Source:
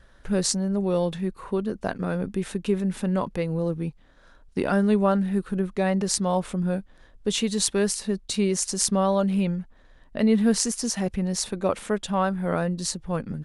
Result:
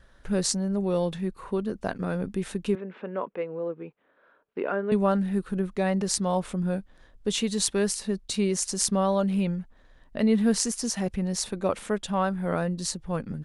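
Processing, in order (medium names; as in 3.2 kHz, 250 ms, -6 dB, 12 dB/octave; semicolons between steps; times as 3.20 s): 2.75–4.92 s: cabinet simulation 400–2500 Hz, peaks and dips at 430 Hz +5 dB, 810 Hz -4 dB, 1.9 kHz -4 dB; trim -2 dB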